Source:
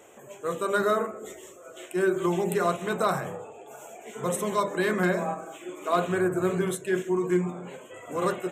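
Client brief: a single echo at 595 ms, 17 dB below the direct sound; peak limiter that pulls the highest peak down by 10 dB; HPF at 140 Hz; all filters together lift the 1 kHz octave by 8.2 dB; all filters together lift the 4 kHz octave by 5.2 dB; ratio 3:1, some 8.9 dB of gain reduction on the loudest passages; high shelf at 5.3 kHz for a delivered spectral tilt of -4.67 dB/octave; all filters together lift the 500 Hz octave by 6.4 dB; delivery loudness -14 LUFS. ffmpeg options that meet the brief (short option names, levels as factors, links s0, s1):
-af "highpass=140,equalizer=f=500:t=o:g=7,equalizer=f=1000:t=o:g=8,equalizer=f=4000:t=o:g=3.5,highshelf=f=5300:g=5.5,acompressor=threshold=0.0631:ratio=3,alimiter=limit=0.0794:level=0:latency=1,aecho=1:1:595:0.141,volume=7.94"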